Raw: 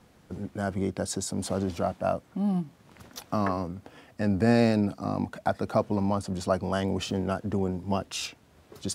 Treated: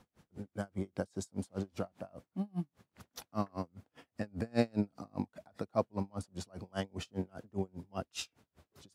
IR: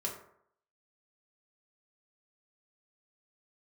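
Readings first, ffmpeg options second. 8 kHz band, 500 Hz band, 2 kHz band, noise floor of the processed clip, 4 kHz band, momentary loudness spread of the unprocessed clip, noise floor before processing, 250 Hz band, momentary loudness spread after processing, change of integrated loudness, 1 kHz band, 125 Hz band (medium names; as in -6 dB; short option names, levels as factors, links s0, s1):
-13.5 dB, -10.5 dB, -11.5 dB, under -85 dBFS, -10.5 dB, 13 LU, -59 dBFS, -11.0 dB, 12 LU, -11.0 dB, -12.5 dB, -10.5 dB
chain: -af "aeval=exprs='val(0)*pow(10,-36*(0.5-0.5*cos(2*PI*5*n/s))/20)':c=same,volume=0.668"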